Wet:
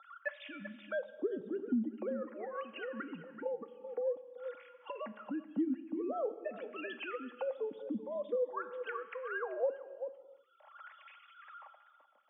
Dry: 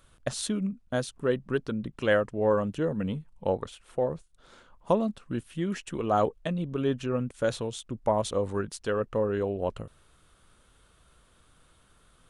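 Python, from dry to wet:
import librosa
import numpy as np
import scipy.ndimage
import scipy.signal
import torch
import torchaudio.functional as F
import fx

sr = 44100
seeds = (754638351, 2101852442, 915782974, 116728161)

p1 = fx.sine_speech(x, sr)
p2 = fx.peak_eq(p1, sr, hz=350.0, db=-4.0, octaves=0.46)
p3 = p2 + 0.48 * np.pad(p2, (int(3.6 * sr / 1000.0), 0))[:len(p2)]
p4 = fx.over_compress(p3, sr, threshold_db=-27.0, ratio=-1.0)
p5 = fx.wah_lfo(p4, sr, hz=0.47, low_hz=210.0, high_hz=2600.0, q=3.3)
p6 = p5 + fx.echo_single(p5, sr, ms=383, db=-15.5, dry=0)
p7 = fx.rev_gated(p6, sr, seeds[0], gate_ms=370, shape='falling', drr_db=11.5)
p8 = fx.band_squash(p7, sr, depth_pct=70)
y = p8 * librosa.db_to_amplitude(3.0)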